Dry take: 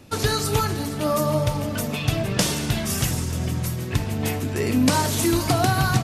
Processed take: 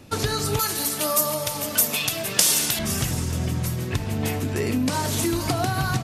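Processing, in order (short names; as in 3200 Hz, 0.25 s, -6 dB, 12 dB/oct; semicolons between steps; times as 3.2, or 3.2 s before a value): compressor, threshold -21 dBFS, peak gain reduction 8 dB; 0.59–2.79 RIAA curve recording; gain +1 dB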